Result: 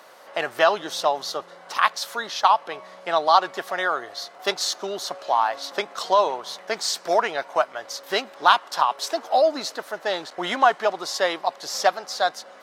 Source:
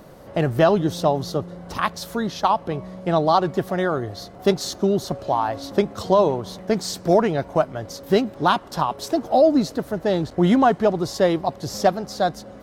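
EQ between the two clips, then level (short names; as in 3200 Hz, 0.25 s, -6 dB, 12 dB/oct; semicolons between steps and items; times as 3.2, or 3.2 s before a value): HPF 1000 Hz 12 dB/oct; high shelf 9800 Hz -10 dB; +6.0 dB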